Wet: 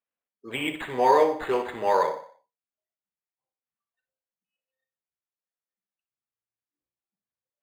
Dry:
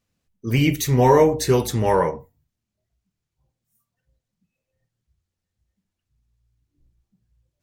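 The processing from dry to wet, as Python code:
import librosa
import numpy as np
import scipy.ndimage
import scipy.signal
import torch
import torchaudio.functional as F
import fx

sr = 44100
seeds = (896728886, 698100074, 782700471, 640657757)

y = scipy.signal.sosfilt(scipy.signal.butter(4, 4200.0, 'lowpass', fs=sr, output='sos'), x)
y = fx.echo_feedback(y, sr, ms=61, feedback_pct=46, wet_db=-10)
y = fx.noise_reduce_blind(y, sr, reduce_db=11)
y = scipy.signal.sosfilt(scipy.signal.butter(2, 590.0, 'highpass', fs=sr, output='sos'), y)
y = np.interp(np.arange(len(y)), np.arange(len(y))[::8], y[::8])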